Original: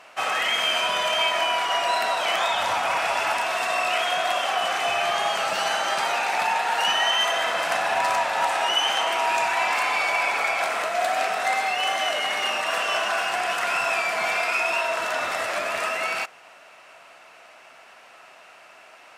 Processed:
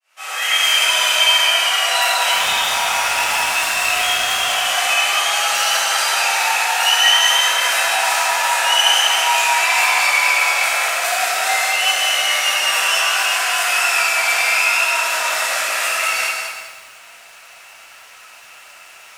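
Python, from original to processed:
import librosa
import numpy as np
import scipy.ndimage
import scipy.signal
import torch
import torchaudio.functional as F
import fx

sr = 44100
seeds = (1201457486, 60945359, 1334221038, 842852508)

y = fx.fade_in_head(x, sr, length_s=0.57)
y = fx.highpass(y, sr, hz=150.0, slope=6)
y = fx.tilt_eq(y, sr, slope=4.5)
y = fx.clip_hard(y, sr, threshold_db=-17.5, at=(2.32, 4.53))
y = fx.rev_plate(y, sr, seeds[0], rt60_s=1.2, hf_ratio=0.8, predelay_ms=0, drr_db=-9.5)
y = fx.echo_crushed(y, sr, ms=197, feedback_pct=35, bits=6, wet_db=-6)
y = y * 10.0 ** (-7.0 / 20.0)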